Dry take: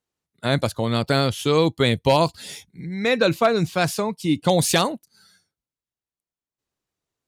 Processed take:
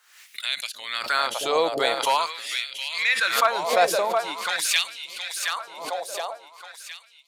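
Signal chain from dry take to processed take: two-band feedback delay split 440 Hz, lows 311 ms, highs 718 ms, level -6 dB; LFO high-pass sine 0.45 Hz 640–2700 Hz; swell ahead of each attack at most 77 dB/s; trim -3 dB

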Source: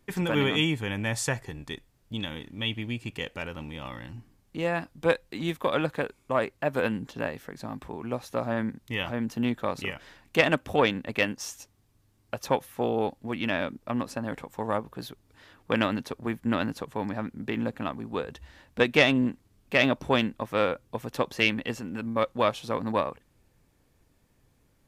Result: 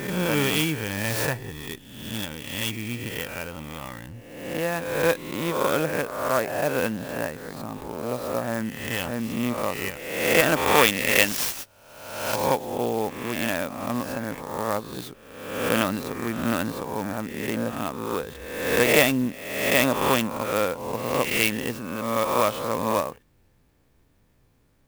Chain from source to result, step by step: reverse spectral sustain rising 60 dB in 1.05 s; 10.56–12.36 s: treble shelf 2.2 kHz +10.5 dB; sampling jitter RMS 0.038 ms

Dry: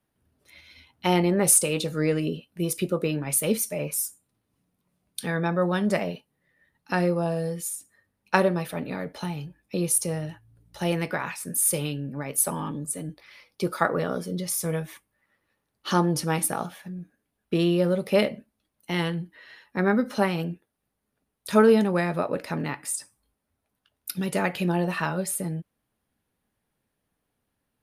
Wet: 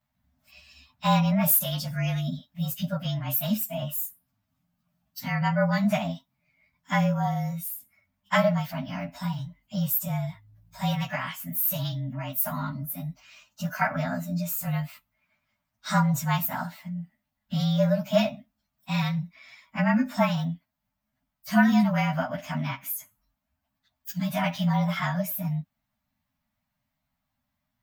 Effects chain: frequency axis rescaled in octaves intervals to 109%; Chebyshev band-stop 270–590 Hz, order 4; trim +3 dB

